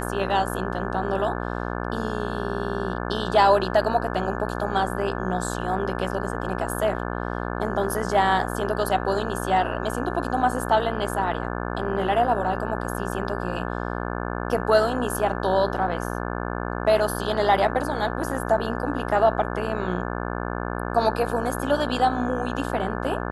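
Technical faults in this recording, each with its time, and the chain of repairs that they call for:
buzz 60 Hz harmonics 29 -29 dBFS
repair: de-hum 60 Hz, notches 29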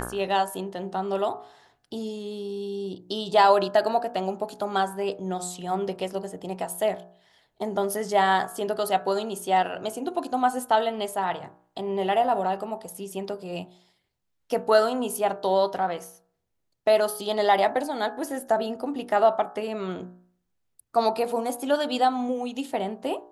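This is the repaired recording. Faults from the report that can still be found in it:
none

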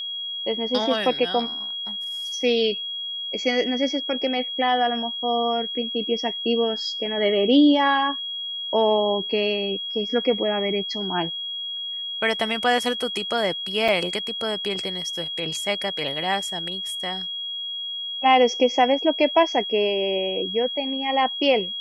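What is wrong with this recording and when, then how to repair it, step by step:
tone 3300 Hz -28 dBFS
13.88–13.89 gap 5.6 ms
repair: notch 3300 Hz, Q 30; interpolate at 13.88, 5.6 ms

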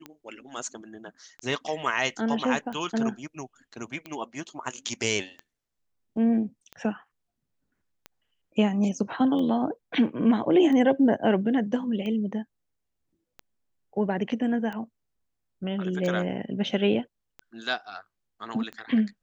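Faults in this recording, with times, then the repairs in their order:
tick 45 rpm -24 dBFS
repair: de-click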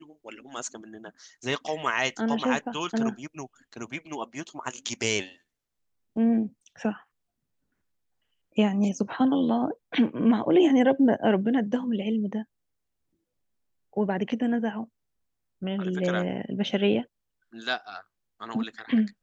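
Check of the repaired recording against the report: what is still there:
none

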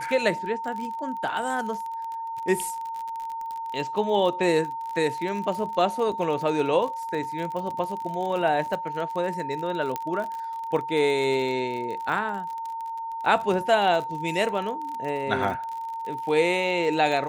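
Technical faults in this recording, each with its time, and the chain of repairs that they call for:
crackle 42/s -31 dBFS
tone 910 Hz -30 dBFS
9.96 pop -14 dBFS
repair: de-click; notch 910 Hz, Q 30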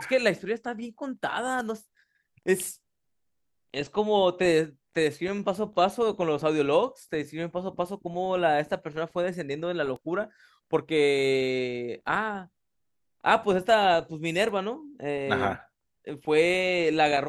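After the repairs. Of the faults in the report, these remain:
9.96 pop

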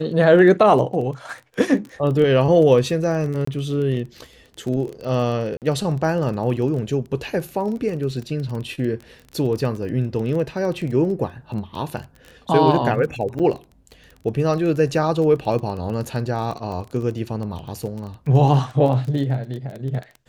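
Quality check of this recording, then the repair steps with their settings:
crackle 22/s -28 dBFS
3.45–3.47 gap 24 ms
5.57–5.62 gap 48 ms
13.39–13.4 gap 7.3 ms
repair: de-click; interpolate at 3.45, 24 ms; interpolate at 5.57, 48 ms; interpolate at 13.39, 7.3 ms

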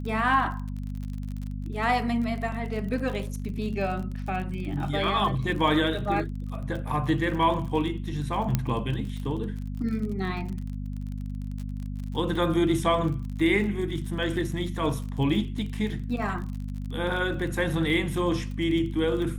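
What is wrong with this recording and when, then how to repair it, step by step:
crackle 42/s -34 dBFS
hum 50 Hz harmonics 5 -33 dBFS
8.55 pop -10 dBFS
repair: de-click; de-hum 50 Hz, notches 5

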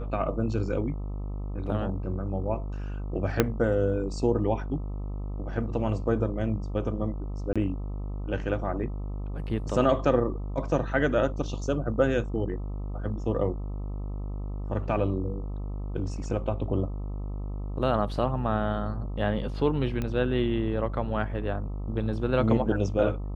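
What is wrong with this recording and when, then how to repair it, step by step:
buzz 50 Hz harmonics 26 -33 dBFS
3.4 pop -6 dBFS
7.53–7.56 gap 26 ms
20.02 pop -18 dBFS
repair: de-click; de-hum 50 Hz, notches 26; interpolate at 7.53, 26 ms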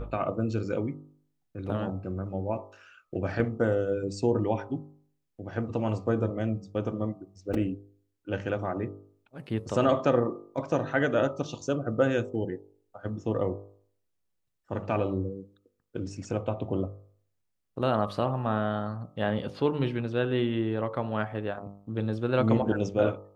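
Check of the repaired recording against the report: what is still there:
3.4 pop

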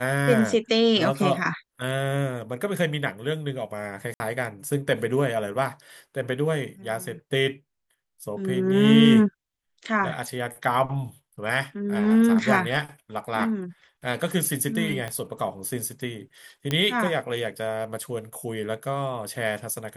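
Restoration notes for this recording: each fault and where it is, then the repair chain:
4.14–4.2 gap 60 ms
15.08 pop -18 dBFS
16.71 pop -11 dBFS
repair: de-click; interpolate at 4.14, 60 ms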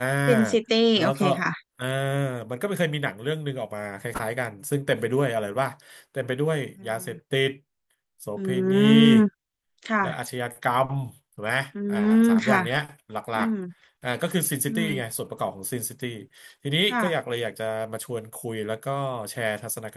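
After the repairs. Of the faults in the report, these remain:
15.08 pop

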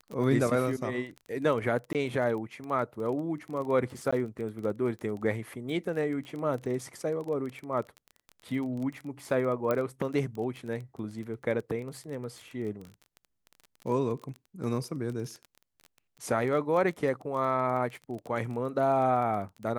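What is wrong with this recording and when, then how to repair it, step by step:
crackle 21/s -35 dBFS
1.93–1.95 gap 18 ms
4.11–4.12 gap 15 ms
9.71 pop -16 dBFS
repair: de-click; interpolate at 1.93, 18 ms; interpolate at 4.11, 15 ms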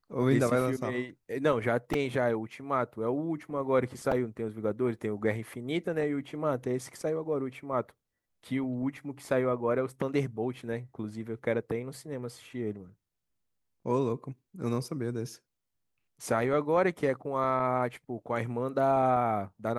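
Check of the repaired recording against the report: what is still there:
none

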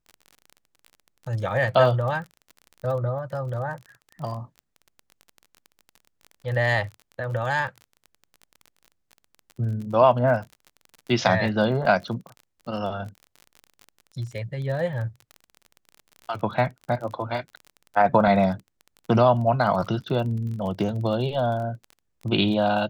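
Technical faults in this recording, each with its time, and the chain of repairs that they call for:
crackle 31/s -33 dBFS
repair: de-click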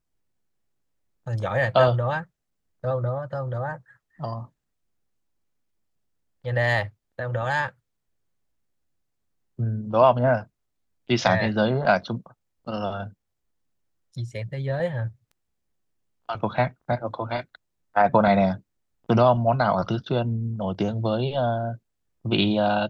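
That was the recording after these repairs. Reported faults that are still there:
none

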